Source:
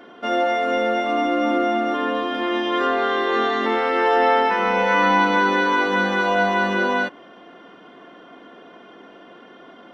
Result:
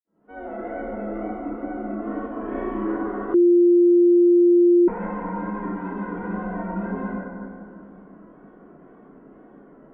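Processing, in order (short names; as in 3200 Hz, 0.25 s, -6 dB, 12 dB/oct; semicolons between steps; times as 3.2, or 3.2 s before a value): opening faded in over 0.51 s; LPF 2800 Hz 24 dB/oct; tilt -4.5 dB/oct; limiter -13.5 dBFS, peak gain reduction 10.5 dB; 5.53–5.94 notch comb 520 Hz; wow and flutter 120 cents; 2.24–2.79 flutter echo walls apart 5.8 m, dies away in 0.79 s; reverb RT60 2.4 s, pre-delay 49 ms; 3.34–4.88 bleep 349 Hz -11.5 dBFS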